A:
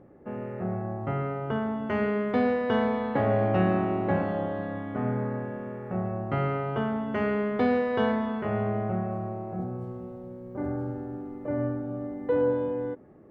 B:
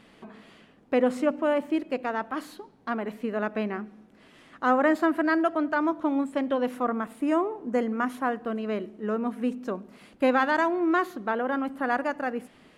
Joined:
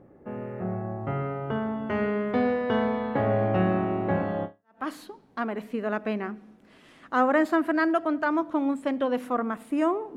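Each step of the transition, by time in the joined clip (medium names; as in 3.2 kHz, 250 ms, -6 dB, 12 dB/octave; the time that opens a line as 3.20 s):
A
4.63 s: go over to B from 2.13 s, crossfade 0.38 s exponential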